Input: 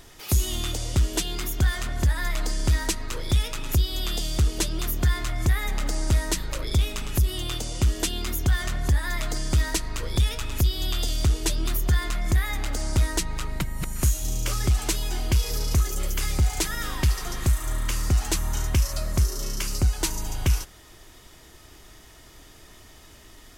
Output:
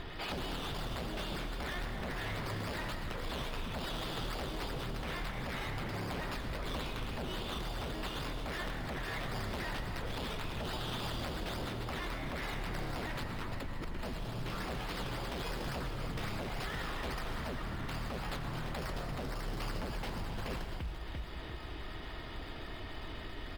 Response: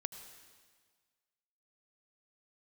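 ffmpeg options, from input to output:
-filter_complex "[0:a]aecho=1:1:344|688|1032:0.211|0.0697|0.023,aresample=11025,aeval=exprs='0.0376*(abs(mod(val(0)/0.0376+3,4)-2)-1)':channel_layout=same,aresample=44100,alimiter=level_in=7dB:limit=-24dB:level=0:latency=1,volume=-7dB,acrossover=split=4300[link_01][link_02];[link_01]acompressor=threshold=-45dB:ratio=6[link_03];[link_02]acrusher=samples=15:mix=1:aa=0.000001:lfo=1:lforange=9:lforate=3.6[link_04];[link_03][link_04]amix=inputs=2:normalize=0[link_05];[1:a]atrim=start_sample=2205,afade=type=out:start_time=0.31:duration=0.01,atrim=end_sample=14112,asetrate=39690,aresample=44100[link_06];[link_05][link_06]afir=irnorm=-1:irlink=0,volume=8.5dB"

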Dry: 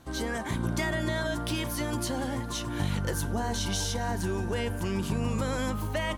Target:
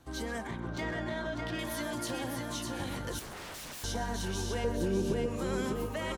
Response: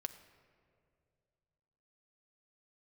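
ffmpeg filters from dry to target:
-filter_complex "[0:a]asettb=1/sr,asplit=3[link_01][link_02][link_03];[link_01]atrim=end=4.644[link_04];[link_02]atrim=start=4.64:end=5.26,asetpts=PTS-STARTPTS,afade=type=in:duration=0.004:curve=qsin,afade=type=out:start_time=0.616:duration=0.004:curve=qsin,lowshelf=frequency=690:width_type=q:width=3:gain=11.5[link_05];[link_03]atrim=start=5.256[link_06];[link_04][link_05]acrossfade=duration=0.004:curve1=hsin:curve2=qsin[link_07];[link_07][link_06]acrossfade=duration=0.004:curve1=qsin:curve2=hsin,acrossover=split=260[link_08][link_09];[link_08]acompressor=threshold=-33dB:ratio=6[link_10];[link_09]alimiter=limit=-20.5dB:level=0:latency=1:release=181[link_11];[link_10][link_11]amix=inputs=2:normalize=0,flanger=delay=2.3:depth=4.3:regen=-68:speed=0.65:shape=triangular,aecho=1:1:600|1200|1800|2400|3000:0.631|0.227|0.0818|0.0294|0.0106,asettb=1/sr,asplit=3[link_12][link_13][link_14];[link_12]atrim=end=0.474[link_15];[link_13]atrim=start=0.47:end=1.59,asetpts=PTS-STARTPTS,afade=type=in:duration=0.004:curve=qsin,afade=type=out:start_time=1.116:duration=0.004:curve=qsin,adynamicsmooth=sensitivity=5.5:basefreq=2900[link_16];[link_14]atrim=start=1.586[link_17];[link_15][link_16]acrossfade=duration=0.004:curve1=hsin:curve2=qsin[link_18];[link_18][link_17]acrossfade=duration=0.004:curve1=qsin:curve2=hsin,aecho=1:1:128:0.2,asettb=1/sr,asplit=3[link_19][link_20][link_21];[link_19]atrim=end=3.194[link_22];[link_20]atrim=start=3.19:end=3.84,asetpts=PTS-STARTPTS,afade=type=in:duration=0.004:curve=qsin,afade=type=out:start_time=0.646:duration=0.004:curve=qsin,aeval=exprs='0.0126*(abs(mod(val(0)/0.0126+3,4)-2)-1)':channel_layout=same[link_23];[link_21]atrim=start=3.836[link_24];[link_22][link_23]acrossfade=duration=0.004:curve1=hsin:curve2=qsin[link_25];[link_25][link_24]acrossfade=duration=0.004:curve1=qsin:curve2=hsin,volume=-1dB"

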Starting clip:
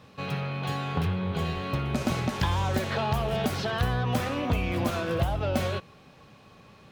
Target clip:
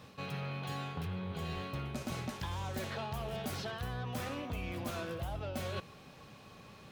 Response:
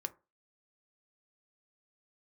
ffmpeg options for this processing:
-af "highshelf=frequency=5500:gain=6,areverse,acompressor=threshold=-35dB:ratio=6,areverse,volume=-1.5dB"

